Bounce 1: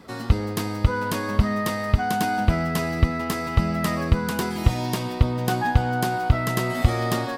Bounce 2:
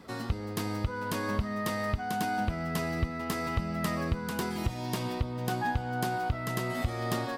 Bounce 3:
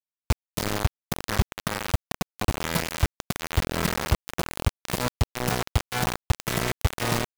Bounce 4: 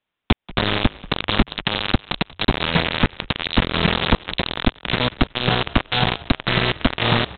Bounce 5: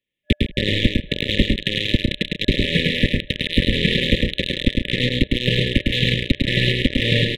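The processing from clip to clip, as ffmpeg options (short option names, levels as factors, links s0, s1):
-af "alimiter=limit=0.2:level=0:latency=1:release=448,volume=0.631"
-filter_complex "[0:a]acrossover=split=160[s0][s1];[s1]asoftclip=type=tanh:threshold=0.0251[s2];[s0][s2]amix=inputs=2:normalize=0,acrusher=bits=4:mix=0:aa=0.000001,volume=2.37"
-filter_complex "[0:a]acompressor=threshold=0.0447:ratio=2,aresample=8000,aeval=exprs='0.188*sin(PI/2*3.16*val(0)/0.188)':c=same,aresample=44100,asplit=4[s0][s1][s2][s3];[s1]adelay=185,afreqshift=-48,volume=0.106[s4];[s2]adelay=370,afreqshift=-96,volume=0.0327[s5];[s3]adelay=555,afreqshift=-144,volume=0.0102[s6];[s0][s4][s5][s6]amix=inputs=4:normalize=0,volume=2.24"
-af "aeval=exprs='0.668*(cos(1*acos(clip(val(0)/0.668,-1,1)))-cos(1*PI/2))+0.0188*(cos(7*acos(clip(val(0)/0.668,-1,1)))-cos(7*PI/2))+0.00596*(cos(8*acos(clip(val(0)/0.668,-1,1)))-cos(8*PI/2))':c=same,aecho=1:1:105|137:0.708|0.316,afftfilt=real='re*(1-between(b*sr/4096,600,1700))':imag='im*(1-between(b*sr/4096,600,1700))':win_size=4096:overlap=0.75"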